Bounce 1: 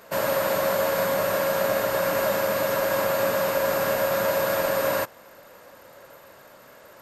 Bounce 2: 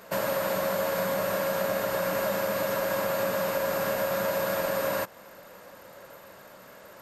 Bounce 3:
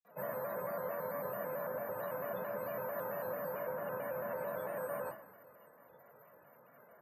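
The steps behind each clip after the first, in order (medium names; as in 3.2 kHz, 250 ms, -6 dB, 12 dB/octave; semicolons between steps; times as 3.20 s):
peaking EQ 190 Hz +6.5 dB 0.22 oct; compression 2:1, threshold -28 dBFS, peak gain reduction 5 dB
loudest bins only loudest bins 64; reverberation, pre-delay 46 ms; vibrato with a chosen wave square 4.5 Hz, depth 100 cents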